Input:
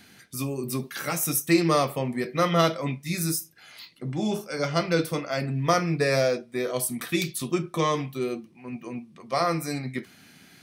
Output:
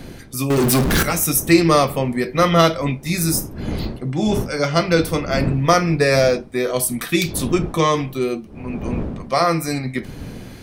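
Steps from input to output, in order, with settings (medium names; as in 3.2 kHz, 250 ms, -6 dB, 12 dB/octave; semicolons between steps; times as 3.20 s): wind noise 250 Hz -38 dBFS; 0.50–1.03 s: power-law waveshaper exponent 0.35; trim +7.5 dB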